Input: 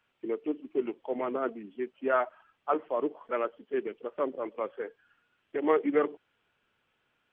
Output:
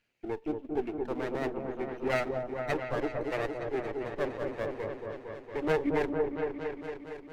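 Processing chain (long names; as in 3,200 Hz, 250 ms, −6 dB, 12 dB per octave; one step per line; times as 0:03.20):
lower of the sound and its delayed copy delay 0.44 ms
echo whose low-pass opens from repeat to repeat 229 ms, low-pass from 750 Hz, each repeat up 1 octave, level −3 dB
level −2 dB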